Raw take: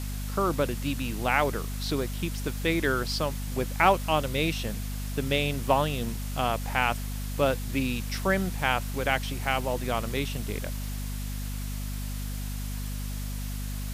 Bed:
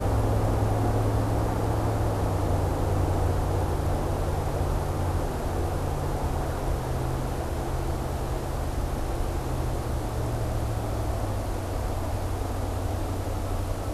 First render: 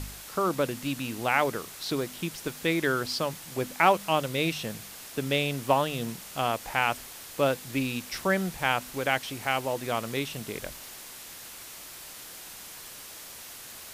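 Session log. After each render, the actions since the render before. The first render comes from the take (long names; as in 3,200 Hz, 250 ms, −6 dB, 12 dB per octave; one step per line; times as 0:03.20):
hum removal 50 Hz, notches 5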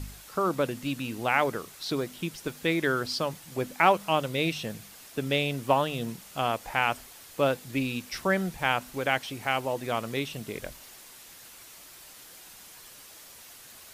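broadband denoise 6 dB, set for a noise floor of −44 dBFS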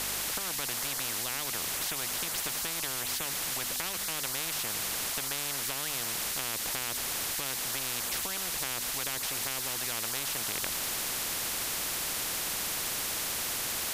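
downward compressor 2 to 1, threshold −35 dBFS, peak gain reduction 11 dB
every bin compressed towards the loudest bin 10 to 1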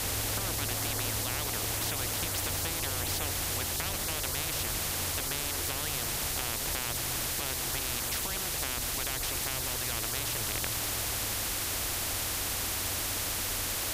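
mix in bed −13.5 dB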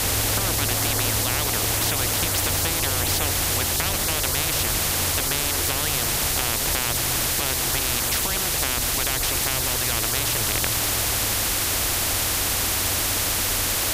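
level +9.5 dB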